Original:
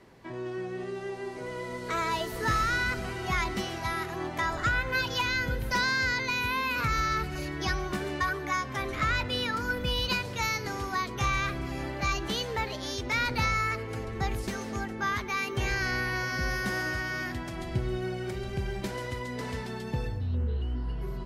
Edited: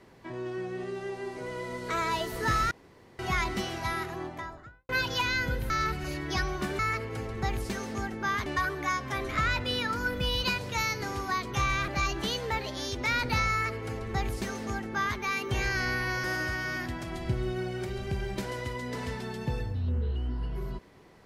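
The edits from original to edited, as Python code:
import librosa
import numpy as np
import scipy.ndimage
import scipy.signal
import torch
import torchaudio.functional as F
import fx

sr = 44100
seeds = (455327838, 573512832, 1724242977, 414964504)

y = fx.studio_fade_out(x, sr, start_s=3.89, length_s=1.0)
y = fx.edit(y, sr, fx.room_tone_fill(start_s=2.71, length_s=0.48),
    fx.cut(start_s=5.7, length_s=1.31),
    fx.cut(start_s=11.52, length_s=0.42),
    fx.duplicate(start_s=13.57, length_s=1.67, to_s=8.1),
    fx.cut(start_s=16.3, length_s=0.4), tone=tone)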